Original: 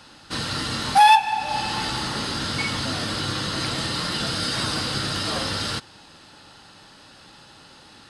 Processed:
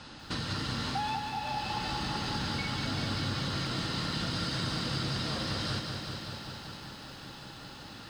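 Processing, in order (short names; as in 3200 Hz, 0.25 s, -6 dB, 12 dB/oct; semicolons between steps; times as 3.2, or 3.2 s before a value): air absorption 92 m; compressor 6:1, threshold -35 dBFS, peak gain reduction 22 dB; tone controls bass +5 dB, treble +4 dB; lo-fi delay 0.193 s, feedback 80%, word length 10-bit, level -6 dB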